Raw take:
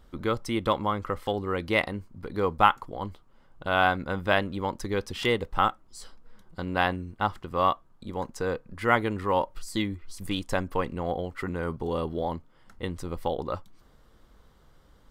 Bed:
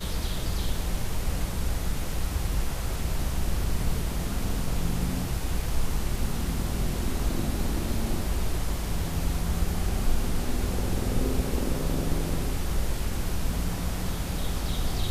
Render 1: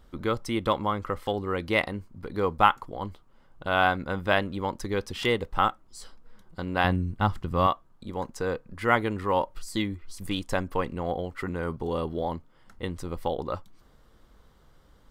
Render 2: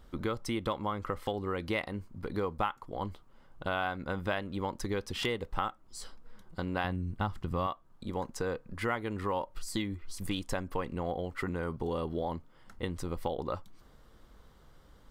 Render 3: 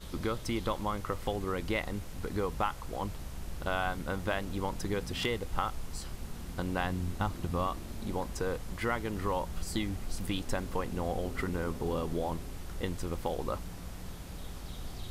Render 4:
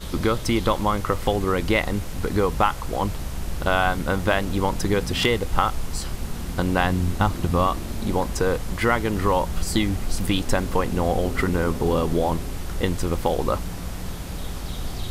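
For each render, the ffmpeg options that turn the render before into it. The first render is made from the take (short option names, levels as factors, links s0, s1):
-filter_complex "[0:a]asettb=1/sr,asplit=3[s0][s1][s2];[s0]atrim=end=6.844[s3];[s1]atrim=start=6.84:end=7.67,asetpts=PTS-STARTPTS,afade=t=in:d=0.004:c=qsin,afade=t=out:st=0.826:d=0.004:c=qsin,bass=f=250:g=10,treble=f=4000:g=2[s4];[s2]atrim=start=7.666[s5];[s3][s4]acrossfade=d=0.004:c1=hsin:c2=qsin[s6];[s6][s5]acrossfade=d=0.004:c1=qsin:c2=hsin"
-af "acompressor=threshold=0.0316:ratio=4"
-filter_complex "[1:a]volume=0.211[s0];[0:a][s0]amix=inputs=2:normalize=0"
-af "volume=3.76"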